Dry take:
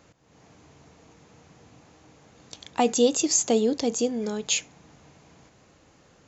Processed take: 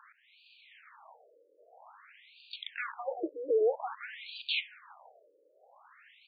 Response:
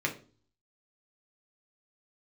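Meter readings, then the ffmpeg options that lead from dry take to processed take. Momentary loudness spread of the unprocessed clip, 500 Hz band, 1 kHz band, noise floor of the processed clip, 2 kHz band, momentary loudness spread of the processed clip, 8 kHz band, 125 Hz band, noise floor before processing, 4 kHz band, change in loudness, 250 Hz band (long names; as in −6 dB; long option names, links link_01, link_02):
6 LU, −7.0 dB, −9.5 dB, −68 dBFS, −0.5 dB, 15 LU, can't be measured, below −40 dB, −59 dBFS, −6.5 dB, −10.5 dB, −19.5 dB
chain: -filter_complex "[0:a]acrossover=split=550[link_01][link_02];[link_01]aeval=exprs='val(0)*gte(abs(val(0)),0.0188)':channel_layout=same[link_03];[link_03][link_02]amix=inputs=2:normalize=0,asplit=2[link_04][link_05];[link_05]highpass=frequency=720:poles=1,volume=25dB,asoftclip=type=tanh:threshold=-9dB[link_06];[link_04][link_06]amix=inputs=2:normalize=0,lowpass=frequency=3500:poles=1,volume=-6dB,aecho=1:1:369:0.178,afftfilt=real='re*between(b*sr/1024,400*pow(3400/400,0.5+0.5*sin(2*PI*0.51*pts/sr))/1.41,400*pow(3400/400,0.5+0.5*sin(2*PI*0.51*pts/sr))*1.41)':imag='im*between(b*sr/1024,400*pow(3400/400,0.5+0.5*sin(2*PI*0.51*pts/sr))/1.41,400*pow(3400/400,0.5+0.5*sin(2*PI*0.51*pts/sr))*1.41)':win_size=1024:overlap=0.75,volume=-8.5dB"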